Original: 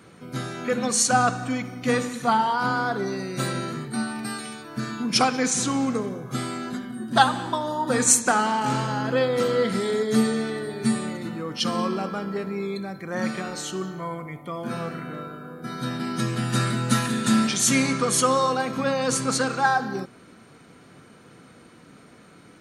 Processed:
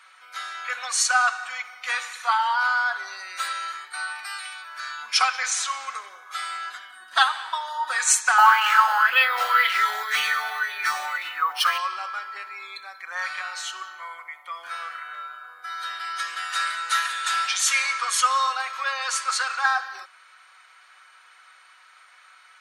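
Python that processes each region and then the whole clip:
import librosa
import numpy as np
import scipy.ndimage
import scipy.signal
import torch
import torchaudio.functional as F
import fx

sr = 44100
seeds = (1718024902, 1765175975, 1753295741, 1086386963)

y = fx.chain(x, sr, fx.low_shelf(hz=410.0, db=8.0),
    fx.resample_bad(factor=3, down='none', up='hold'),
    fx.bell_lfo(hz=1.9, low_hz=740.0, high_hz=2800.0, db=16), at=(8.38, 11.78))
y = scipy.signal.sosfilt(scipy.signal.butter(4, 1100.0, 'highpass', fs=sr, output='sos'), y)
y = fx.high_shelf(y, sr, hz=5900.0, db=-11.5)
y = y + 0.4 * np.pad(y, (int(5.4 * sr / 1000.0), 0))[:len(y)]
y = y * librosa.db_to_amplitude(5.0)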